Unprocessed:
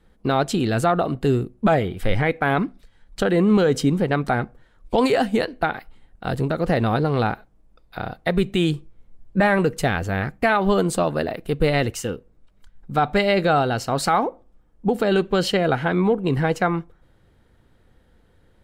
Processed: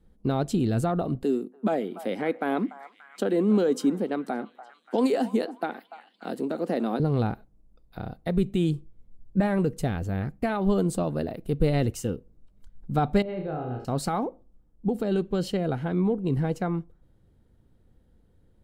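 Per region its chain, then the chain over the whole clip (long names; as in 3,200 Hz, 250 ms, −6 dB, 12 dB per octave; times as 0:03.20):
0:01.23–0:07.00: Butterworth high-pass 220 Hz + echo through a band-pass that steps 290 ms, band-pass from 980 Hz, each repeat 0.7 octaves, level −11.5 dB
0:13.22–0:13.85: high-frequency loss of the air 480 metres + tuned comb filter 58 Hz, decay 1.7 s, mix 70% + flutter between parallel walls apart 5.5 metres, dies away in 0.49 s
whole clip: speech leveller 2 s; drawn EQ curve 230 Hz 0 dB, 1,800 Hz −13 dB, 10,000 Hz −5 dB; level −2 dB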